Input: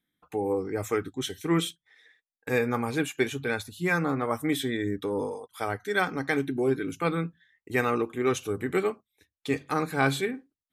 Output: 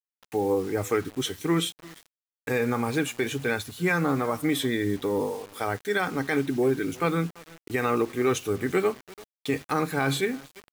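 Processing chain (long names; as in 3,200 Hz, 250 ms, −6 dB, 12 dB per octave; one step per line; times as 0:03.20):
brickwall limiter −17.5 dBFS, peak gain reduction 6.5 dB
repeating echo 340 ms, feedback 22%, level −24 dB
bit-depth reduction 8 bits, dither none
level +3 dB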